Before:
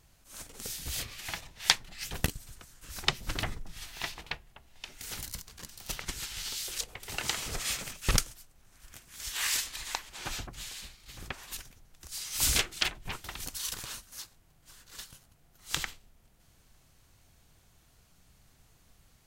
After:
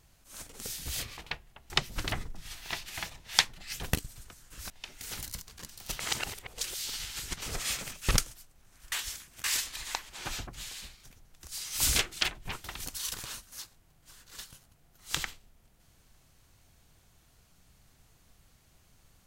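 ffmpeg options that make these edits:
-filter_complex "[0:a]asplit=10[a][b][c][d][e][f][g][h][i][j];[a]atrim=end=1.172[k];[b]atrim=start=4.168:end=4.702[l];[c]atrim=start=3.008:end=4.172[m];[d]atrim=start=1.168:end=3.012[n];[e]atrim=start=4.698:end=6.002[o];[f]atrim=start=5.998:end=7.422,asetpts=PTS-STARTPTS,areverse[p];[g]atrim=start=7.418:end=8.922[q];[h]atrim=start=8.918:end=9.442,asetpts=PTS-STARTPTS,areverse[r];[i]atrim=start=9.438:end=11.042[s];[j]atrim=start=11.638[t];[k][l]acrossfade=d=0.004:c1=hsin:c2=hsin[u];[u][m]acrossfade=d=0.004:c1=hsin:c2=hsin[v];[v][n]acrossfade=d=0.004:c1=hsin:c2=hsin[w];[w][o]acrossfade=d=0.004:c1=hsin:c2=hsin[x];[x][p]acrossfade=d=0.004:c1=hsin:c2=hsin[y];[y][q]acrossfade=d=0.004:c1=hsin:c2=hsin[z];[z][r]acrossfade=d=0.004:c1=hsin:c2=hsin[aa];[aa][s]acrossfade=d=0.004:c1=hsin:c2=hsin[ab];[ab][t]acrossfade=d=0.004:c1=hsin:c2=hsin"

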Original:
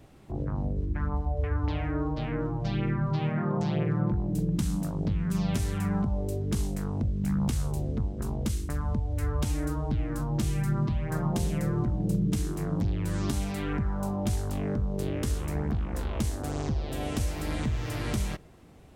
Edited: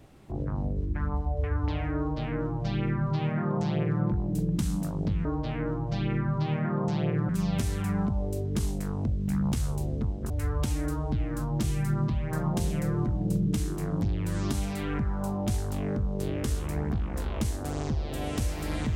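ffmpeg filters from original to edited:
-filter_complex "[0:a]asplit=4[a][b][c][d];[a]atrim=end=5.252[e];[b]atrim=start=1.978:end=4.022[f];[c]atrim=start=5.248:end=8.262[g];[d]atrim=start=9.088[h];[e][f]acrossfade=d=0.004:c1=hsin:c2=hsin[i];[i][g]acrossfade=d=0.004:c1=hsin:c2=hsin[j];[j][h]acrossfade=d=0.004:c1=hsin:c2=hsin"

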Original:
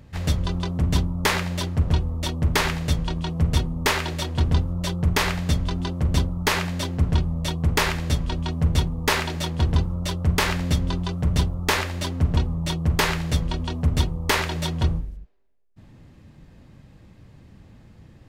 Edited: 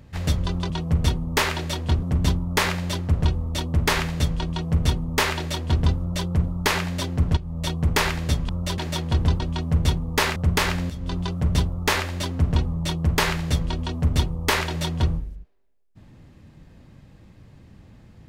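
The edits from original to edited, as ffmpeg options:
-filter_complex "[0:a]asplit=10[a][b][c][d][e][f][g][h][i][j];[a]atrim=end=0.702[k];[b]atrim=start=3.188:end=4.512[l];[c]atrim=start=0.698:end=5.122[m];[d]atrim=start=6.248:end=7.18,asetpts=PTS-STARTPTS,afade=t=out:st=0.928:d=0.004:c=hsin:silence=0.158489[n];[e]atrim=start=7.18:end=8.302,asetpts=PTS-STARTPTS,afade=t=in:d=0.3:silence=0.158489[o];[f]atrim=start=9.878:end=10.172[p];[g]atrim=start=9.258:end=9.882[q];[h]atrim=start=8.298:end=9.262[r];[i]atrim=start=10.168:end=10.71,asetpts=PTS-STARTPTS,afade=t=out:st=0.538:d=0.004:c=hsin:silence=0.1[s];[j]atrim=start=10.71,asetpts=PTS-STARTPTS,afade=t=in:d=0.29:silence=0.1[t];[k][l]acrossfade=d=0.004:c1=hsin:c2=hsin[u];[u][m]acrossfade=d=0.004:c1=hsin:c2=hsin[v];[n][o]concat=n=2:v=0:a=1[w];[v][w]acrossfade=d=0.004:c1=hsin:c2=hsin[x];[x][p]acrossfade=d=0.004:c1=hsin:c2=hsin[y];[y][q]acrossfade=d=0.004:c1=hsin:c2=hsin[z];[z][r]acrossfade=d=0.004:c1=hsin:c2=hsin[aa];[s][t]concat=n=2:v=0:a=1[ab];[aa][ab]acrossfade=d=0.004:c1=hsin:c2=hsin"

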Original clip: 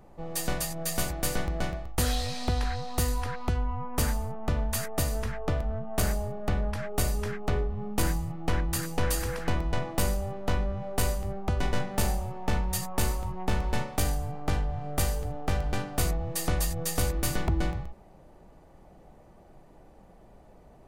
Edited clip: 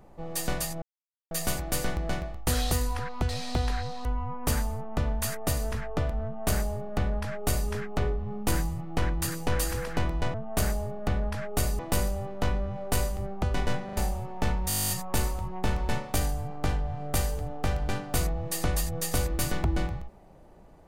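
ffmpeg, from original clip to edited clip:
-filter_complex "[0:a]asplit=21[a][b][c][d][e][f][g][h][i][j][k][l][m][n][o][p][q][r][s][t][u];[a]atrim=end=0.82,asetpts=PTS-STARTPTS,afade=t=out:st=0.816:d=0.004:c=hsin,apad=pad_dur=0.49[v];[b]atrim=start=0.82:end=2.222,asetpts=PTS-STARTPTS,afade=t=in:d=0.004:c=hsin[w];[c]atrim=start=2.978:end=3.562[x];[d]atrim=start=2.218:end=2.982[y];[e]atrim=start=3.558:end=9.852[z];[f]atrim=start=5.748:end=7.202[aa];[g]atrim=start=9.848:end=11.952[ab];[h]atrim=start=11.908:end=11.952[ac];[i]atrim=start=11.908:end=11.952[ad];[j]atrim=start=12.028:end=12.762[ae];[k]atrim=start=12.738:end=12.762[af];[l]atrim=start=12.738:end=12.762[ag];[m]atrim=start=12.738:end=12.762[ah];[n]atrim=start=12.738:end=12.762[ai];[o]atrim=start=12.738:end=12.762[aj];[p]atrim=start=12.738:end=12.762[ak];[q]atrim=start=12.738:end=12.762[al];[r]atrim=start=12.738:end=12.762[am];[s]atrim=start=12.738:end=12.762[an];[t]atrim=start=12.738:end=12.762[ao];[u]atrim=start=12.738[ap];[v][w]concat=n=2:v=0:a=1[aq];[aq][x]acrossfade=d=0.004:c1=hsin:c2=hsin[ar];[ar][y]acrossfade=d=0.004:c1=hsin:c2=hsin[as];[as][z]acrossfade=d=0.004:c1=hsin:c2=hsin[at];[at][aa]acrossfade=d=0.004:c1=hsin:c2=hsin[au];[au][ab]acrossfade=d=0.004:c1=hsin:c2=hsin[av];[av][ac]acrossfade=d=0.004:c1=hsin:c2=hsin[aw];[aw][ad]acrossfade=d=0.004:c1=hsin:c2=hsin[ax];[ax][ae]acrossfade=d=0.004:c1=hsin:c2=hsin[ay];[ay][af]acrossfade=d=0.004:c1=hsin:c2=hsin[az];[az][ag]acrossfade=d=0.004:c1=hsin:c2=hsin[ba];[ba][ah]acrossfade=d=0.004:c1=hsin:c2=hsin[bb];[bb][ai]acrossfade=d=0.004:c1=hsin:c2=hsin[bc];[bc][aj]acrossfade=d=0.004:c1=hsin:c2=hsin[bd];[bd][ak]acrossfade=d=0.004:c1=hsin:c2=hsin[be];[be][al]acrossfade=d=0.004:c1=hsin:c2=hsin[bf];[bf][am]acrossfade=d=0.004:c1=hsin:c2=hsin[bg];[bg][an]acrossfade=d=0.004:c1=hsin:c2=hsin[bh];[bh][ao]acrossfade=d=0.004:c1=hsin:c2=hsin[bi];[bi][ap]acrossfade=d=0.004:c1=hsin:c2=hsin"

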